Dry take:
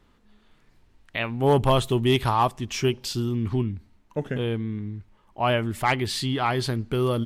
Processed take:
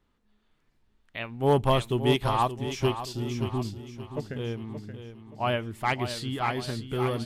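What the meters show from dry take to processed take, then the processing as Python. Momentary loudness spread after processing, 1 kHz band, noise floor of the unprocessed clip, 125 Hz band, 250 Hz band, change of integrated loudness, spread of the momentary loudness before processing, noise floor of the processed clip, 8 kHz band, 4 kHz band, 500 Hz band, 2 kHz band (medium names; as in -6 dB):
15 LU, -3.0 dB, -61 dBFS, -4.0 dB, -4.5 dB, -3.5 dB, 13 LU, -71 dBFS, -6.5 dB, -4.5 dB, -3.0 dB, -4.0 dB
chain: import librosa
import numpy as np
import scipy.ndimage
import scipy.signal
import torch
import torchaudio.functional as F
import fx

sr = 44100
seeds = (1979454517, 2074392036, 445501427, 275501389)

p1 = x + fx.echo_feedback(x, sr, ms=576, feedback_pct=49, wet_db=-7.5, dry=0)
p2 = fx.upward_expand(p1, sr, threshold_db=-34.0, expansion=1.5)
y = p2 * librosa.db_to_amplitude(-2.0)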